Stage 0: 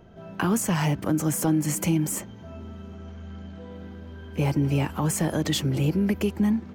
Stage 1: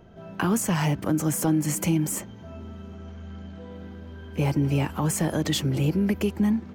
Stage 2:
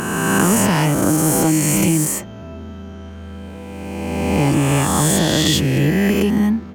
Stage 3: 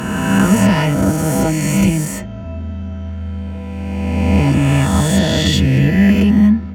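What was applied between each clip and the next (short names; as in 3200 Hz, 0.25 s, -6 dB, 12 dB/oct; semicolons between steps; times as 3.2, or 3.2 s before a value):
nothing audible
spectral swells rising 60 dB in 2.29 s; gain +5 dB
reverb RT60 0.10 s, pre-delay 3 ms, DRR 3 dB; gain -7.5 dB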